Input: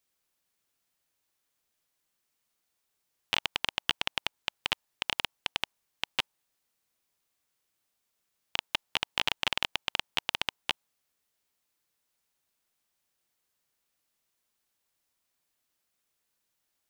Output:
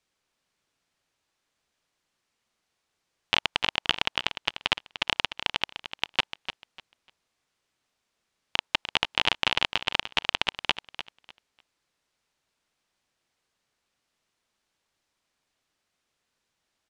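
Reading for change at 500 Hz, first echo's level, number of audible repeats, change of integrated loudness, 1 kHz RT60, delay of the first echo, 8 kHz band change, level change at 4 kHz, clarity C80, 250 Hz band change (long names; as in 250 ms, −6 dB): +6.0 dB, −11.0 dB, 2, +5.0 dB, no reverb audible, 298 ms, +0.5 dB, +5.0 dB, no reverb audible, +6.0 dB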